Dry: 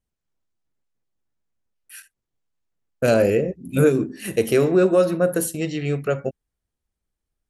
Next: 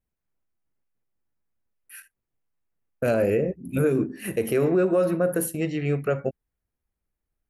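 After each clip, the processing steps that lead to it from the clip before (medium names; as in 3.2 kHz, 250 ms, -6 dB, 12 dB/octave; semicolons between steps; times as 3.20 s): high-order bell 5.2 kHz -8.5 dB; peak limiter -12.5 dBFS, peak gain reduction 6.5 dB; trim -1 dB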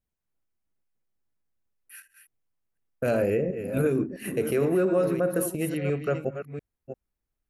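chunks repeated in reverse 347 ms, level -9 dB; trim -2.5 dB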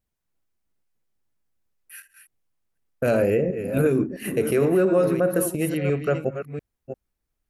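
wow and flutter 21 cents; trim +4 dB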